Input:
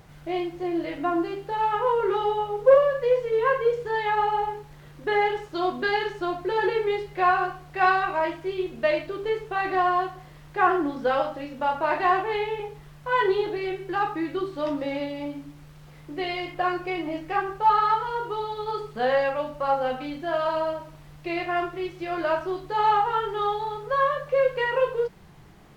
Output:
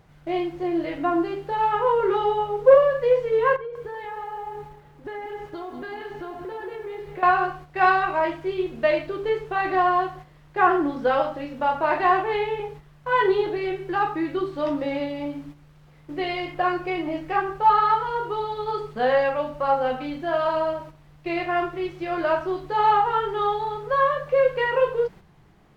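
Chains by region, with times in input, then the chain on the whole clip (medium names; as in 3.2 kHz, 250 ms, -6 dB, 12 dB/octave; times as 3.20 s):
3.56–7.23 s: treble shelf 4.3 kHz -10.5 dB + compression 5:1, threshold -35 dBFS + bit-crushed delay 191 ms, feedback 55%, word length 9-bit, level -9.5 dB
whole clip: gate -42 dBFS, range -7 dB; treble shelf 4.4 kHz -6.5 dB; trim +2.5 dB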